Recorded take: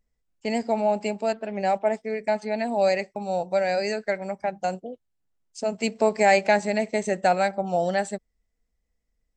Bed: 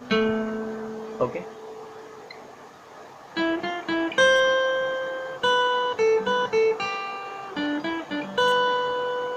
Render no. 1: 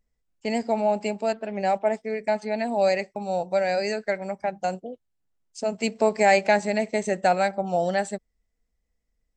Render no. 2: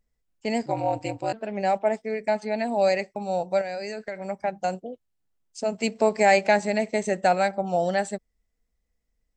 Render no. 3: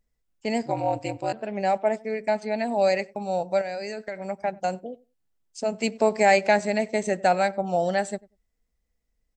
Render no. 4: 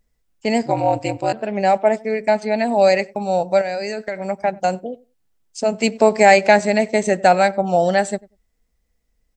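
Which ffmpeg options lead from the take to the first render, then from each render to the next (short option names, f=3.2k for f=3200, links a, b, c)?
-af anull
-filter_complex "[0:a]asplit=3[a][b][c];[a]afade=t=out:st=0.65:d=0.02[d];[b]aeval=exprs='val(0)*sin(2*PI*84*n/s)':c=same,afade=t=in:st=0.65:d=0.02,afade=t=out:st=1.32:d=0.02[e];[c]afade=t=in:st=1.32:d=0.02[f];[d][e][f]amix=inputs=3:normalize=0,asettb=1/sr,asplit=3[g][h][i];[g]atrim=end=3.614[j];[h]atrim=start=3.61:end=4.29,asetpts=PTS-STARTPTS,afade=t=in:d=0.004:c=qsin,afade=t=out:st=0.676:d=0.004:c=qsin,acompressor=threshold=-28dB:ratio=10:attack=3.2:release=140:knee=1:detection=peak[k];[i]atrim=start=4.286[l];[j][k]acrossfade=d=0.004:c1=hsin:c2=qsin[m];[m][l]acrossfade=d=0.004:c1=qsin:c2=hsin"
-filter_complex "[0:a]asplit=2[a][b];[b]adelay=95,lowpass=f=1.2k:p=1,volume=-22dB,asplit=2[c][d];[d]adelay=95,lowpass=f=1.2k:p=1,volume=0.16[e];[a][c][e]amix=inputs=3:normalize=0"
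-af "volume=7.5dB,alimiter=limit=-1dB:level=0:latency=1"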